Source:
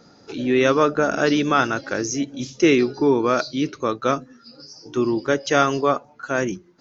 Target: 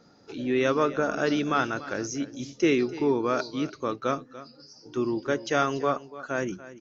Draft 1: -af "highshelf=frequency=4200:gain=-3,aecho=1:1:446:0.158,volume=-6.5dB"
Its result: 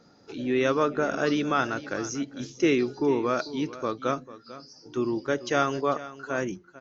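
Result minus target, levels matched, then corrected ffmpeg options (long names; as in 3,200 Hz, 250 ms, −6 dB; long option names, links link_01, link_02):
echo 156 ms late
-af "highshelf=frequency=4200:gain=-3,aecho=1:1:290:0.158,volume=-6.5dB"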